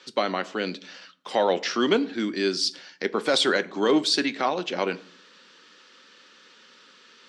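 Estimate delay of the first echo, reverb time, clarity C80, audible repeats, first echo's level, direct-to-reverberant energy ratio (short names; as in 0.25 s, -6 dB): none, 0.50 s, 22.5 dB, none, none, 11.5 dB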